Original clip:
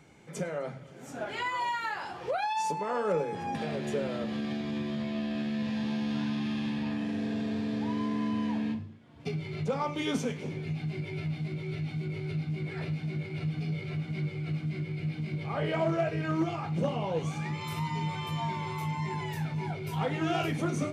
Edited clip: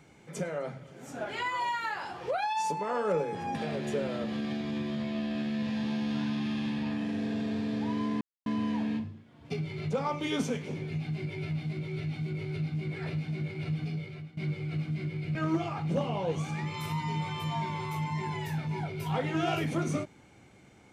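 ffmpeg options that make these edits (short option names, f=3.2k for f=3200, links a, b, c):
-filter_complex "[0:a]asplit=4[a][b][c][d];[a]atrim=end=8.21,asetpts=PTS-STARTPTS,afade=t=out:st=8.206:d=0.004:c=hsin,apad=pad_dur=0.25[e];[b]atrim=start=8.21:end=14.12,asetpts=PTS-STARTPTS,afade=t=in:d=0.004:c=hsin,afade=t=out:st=5.35:d=0.56:silence=0.125893[f];[c]atrim=start=14.12:end=15.102,asetpts=PTS-STARTPTS,afade=t=in:d=0.004:c=hsin:silence=0.125893[g];[d]atrim=start=16.218[h];[e][f][g]concat=n=3:v=0:a=1[i];[i][h]acrossfade=d=0.004:c1=hsin:c2=hsin"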